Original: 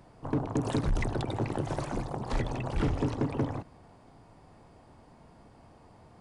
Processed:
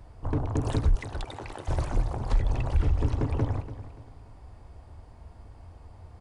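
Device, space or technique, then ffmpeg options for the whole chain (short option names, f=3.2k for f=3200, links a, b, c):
car stereo with a boomy subwoofer: -filter_complex "[0:a]asettb=1/sr,asplit=3[a][b][c];[a]atrim=end=0.954[d];[b]atrim=start=0.95:end=1.68,asetpts=PTS-STARTPTS,afade=t=in:d=0.004:c=qsin,afade=t=out:st=0.726:d=0.004:c=qsin,highpass=f=970:p=1[e];[c]atrim=start=1.676[f];[d][e]acrossfade=d=0.004:c1=hsin:c2=qsin[g];[g][f]acrossfade=d=0.004:c1=qsin:c2=hsin,lowshelf=f=110:t=q:w=1.5:g=13.5,alimiter=limit=-15dB:level=0:latency=1:release=178,aecho=1:1:289|578|867:0.211|0.074|0.0259"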